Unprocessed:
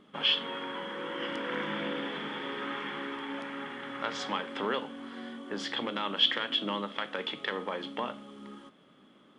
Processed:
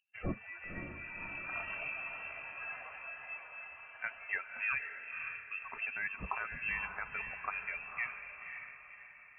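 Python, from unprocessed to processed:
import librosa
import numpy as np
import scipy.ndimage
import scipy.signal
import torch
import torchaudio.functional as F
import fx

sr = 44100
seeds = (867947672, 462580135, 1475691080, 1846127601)

y = fx.bin_expand(x, sr, power=2.0)
y = fx.freq_invert(y, sr, carrier_hz=2900)
y = fx.echo_diffused(y, sr, ms=537, feedback_pct=43, wet_db=-6.5)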